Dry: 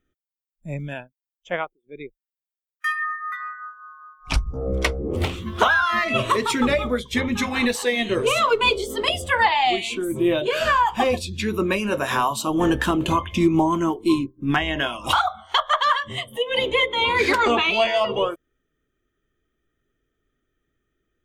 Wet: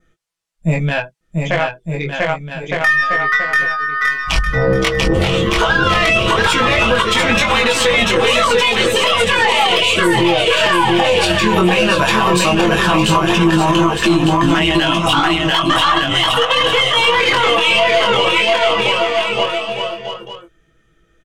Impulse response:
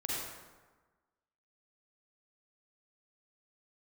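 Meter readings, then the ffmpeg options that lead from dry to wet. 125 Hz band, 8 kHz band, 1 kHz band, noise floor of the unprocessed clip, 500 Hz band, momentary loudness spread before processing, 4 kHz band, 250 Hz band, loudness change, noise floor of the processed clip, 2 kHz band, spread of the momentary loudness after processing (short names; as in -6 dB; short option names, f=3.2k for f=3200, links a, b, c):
+10.5 dB, +10.0 dB, +7.0 dB, under -85 dBFS, +8.5 dB, 11 LU, +11.5 dB, +7.0 dB, +8.0 dB, -58 dBFS, +10.0 dB, 8 LU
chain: -filter_complex "[0:a]lowpass=9.3k,equalizer=f=280:w=4.2:g=-8.5,bandreject=f=370:w=12,aecho=1:1:6.1:0.55,adynamicequalizer=threshold=0.0126:dfrequency=2900:dqfactor=3.6:tfrequency=2900:tqfactor=3.6:attack=5:release=100:ratio=0.375:range=3:mode=boostabove:tftype=bell,acompressor=threshold=-26dB:ratio=6,aeval=exprs='0.211*(cos(1*acos(clip(val(0)/0.211,-1,1)))-cos(1*PI/2))+0.00841*(cos(4*acos(clip(val(0)/0.211,-1,1)))-cos(4*PI/2))+0.00944*(cos(7*acos(clip(val(0)/0.211,-1,1)))-cos(7*PI/2))':c=same,flanger=delay=17.5:depth=6.2:speed=0.14,asplit=2[a][b];[b]aecho=0:1:690|1208|1596|1887|2105:0.631|0.398|0.251|0.158|0.1[c];[a][c]amix=inputs=2:normalize=0,alimiter=level_in=24.5dB:limit=-1dB:release=50:level=0:latency=1,volume=-3dB"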